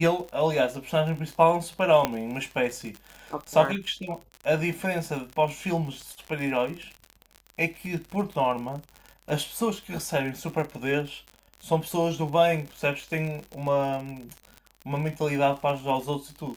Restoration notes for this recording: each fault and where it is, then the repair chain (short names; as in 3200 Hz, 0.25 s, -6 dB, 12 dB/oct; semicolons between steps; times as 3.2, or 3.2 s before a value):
crackle 58/s -32 dBFS
2.05 pop -8 dBFS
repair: de-click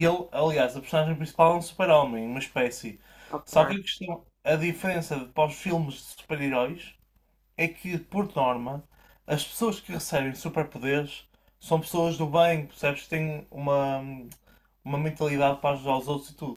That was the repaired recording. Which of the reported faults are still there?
2.05 pop